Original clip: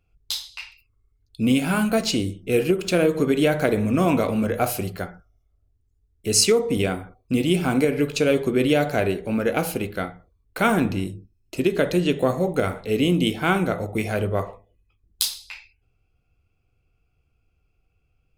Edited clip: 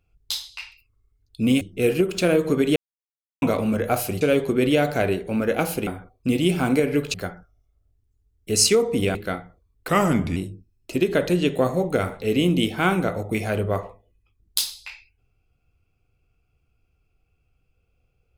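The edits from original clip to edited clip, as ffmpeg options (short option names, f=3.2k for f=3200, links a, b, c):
-filter_complex "[0:a]asplit=10[a][b][c][d][e][f][g][h][i][j];[a]atrim=end=1.612[k];[b]atrim=start=2.308:end=3.46,asetpts=PTS-STARTPTS,afade=t=out:st=1.148:d=0.004:c=hsin[l];[c]atrim=start=3.46:end=4.12,asetpts=PTS-STARTPTS,volume=0[m];[d]atrim=start=4.12:end=4.912,asetpts=PTS-STARTPTS,afade=t=in:d=0.004:c=hsin[n];[e]atrim=start=8.188:end=9.852[o];[f]atrim=start=6.918:end=8.192[p];[g]atrim=start=4.908:end=6.922[q];[h]atrim=start=9.848:end=10.584[r];[i]atrim=start=10.58:end=11,asetpts=PTS-STARTPTS,asetrate=38367,aresample=44100[s];[j]atrim=start=10.996[t];[l][m][n]concat=n=3:v=0:a=1[u];[k][u]acrossfade=d=0.004:c1=hsin:c2=hsin[v];[v][o]acrossfade=d=0.004:c1=hsin:c2=hsin[w];[w][p]acrossfade=d=0.004:c1=hsin:c2=hsin[x];[x][q]acrossfade=d=0.004:c1=hsin:c2=hsin[y];[y][r]acrossfade=d=0.004:c1=hsin:c2=hsin[z];[z][s]acrossfade=d=0.004:c1=hsin:c2=hsin[aa];[aa][t]acrossfade=d=0.004:c1=hsin:c2=hsin"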